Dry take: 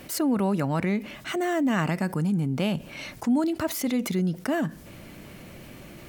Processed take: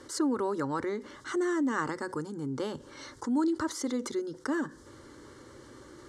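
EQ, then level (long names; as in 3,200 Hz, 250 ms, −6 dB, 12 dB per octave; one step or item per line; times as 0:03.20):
high-pass filter 120 Hz 6 dB per octave
low-pass filter 8,100 Hz 24 dB per octave
phaser with its sweep stopped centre 680 Hz, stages 6
0.0 dB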